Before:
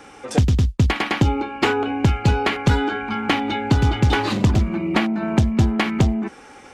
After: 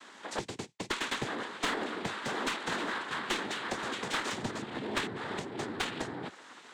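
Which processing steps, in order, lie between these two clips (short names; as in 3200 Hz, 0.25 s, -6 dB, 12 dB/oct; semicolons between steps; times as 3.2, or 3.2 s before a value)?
minimum comb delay 0.59 ms; HPF 450 Hz 12 dB/oct; high shelf 4400 Hz -3.5 dB; in parallel at -3 dB: compressor 5:1, threshold -35 dBFS, peak gain reduction 15 dB; on the sum: noise vocoder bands 6; one-sided clip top -21 dBFS; gain -8 dB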